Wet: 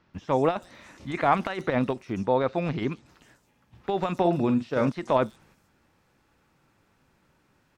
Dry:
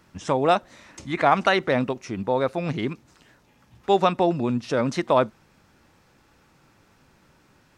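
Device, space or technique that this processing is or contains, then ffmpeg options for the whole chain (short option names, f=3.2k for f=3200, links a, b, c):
de-esser from a sidechain: -filter_complex "[0:a]asettb=1/sr,asplit=3[a][b][c];[a]atrim=end=2.124[d];[b]atrim=start=2.12:end=2.92,asetpts=PTS-STARTPTS,afade=t=in:d=0.004:c=qsin,afade=t=out:st=0.796:d=0.004:c=qsin,lowpass=f=7.1k:w=0.5412,lowpass=f=7.1k:w=1.3066[e];[c]atrim=start=2.916[f];[d][e]acrossfade=d=0.004:c1=hsin:c2=qsin[g];[g][f]acrossfade=d=0.004:c1=qsin:c2=hsin,agate=range=-7dB:threshold=-55dB:ratio=16:detection=peak,asettb=1/sr,asplit=3[h][i][j];[h]atrim=end=4.174[k];[i]atrim=start=4.17:end=4.89,asetpts=PTS-STARTPTS,afade=t=in:d=0.004:c=qsin,afade=t=out:st=0.716:d=0.004:c=qsin,asplit=2[l][m];[m]adelay=45,volume=-9.5dB[n];[l][n]amix=inputs=2:normalize=0,atrim=end_sample=31752[o];[j]atrim=start=4.886[p];[k][o]acrossfade=d=0.004:c1=hsin:c2=qsin[q];[q][p]acrossfade=d=0.004:c1=qsin:c2=hsin,asplit=2[r][s];[s]highpass=f=4.7k:w=0.5412,highpass=f=4.7k:w=1.3066,apad=whole_len=343051[t];[r][t]sidechaincompress=threshold=-50dB:ratio=8:attack=1.2:release=28,acrossover=split=5400[u][v];[v]adelay=140[w];[u][w]amix=inputs=2:normalize=0"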